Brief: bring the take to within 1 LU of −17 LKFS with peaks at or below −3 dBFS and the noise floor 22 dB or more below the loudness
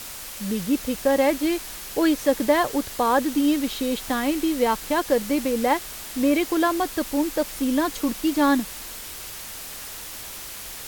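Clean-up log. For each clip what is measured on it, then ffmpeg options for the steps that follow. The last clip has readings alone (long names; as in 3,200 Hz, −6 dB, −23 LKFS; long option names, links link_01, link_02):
background noise floor −37 dBFS; target noise floor −46 dBFS; integrated loudness −24.0 LKFS; sample peak −6.5 dBFS; target loudness −17.0 LKFS
→ -af "afftdn=noise_reduction=9:noise_floor=-37"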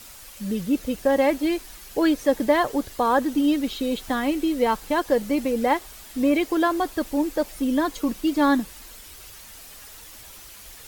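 background noise floor −44 dBFS; target noise floor −46 dBFS
→ -af "afftdn=noise_reduction=6:noise_floor=-44"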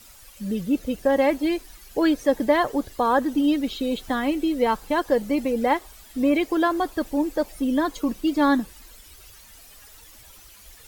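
background noise floor −49 dBFS; integrated loudness −23.5 LKFS; sample peak −7.0 dBFS; target loudness −17.0 LKFS
→ -af "volume=6.5dB,alimiter=limit=-3dB:level=0:latency=1"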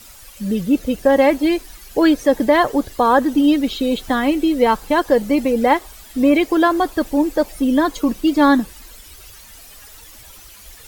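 integrated loudness −17.0 LKFS; sample peak −3.0 dBFS; background noise floor −42 dBFS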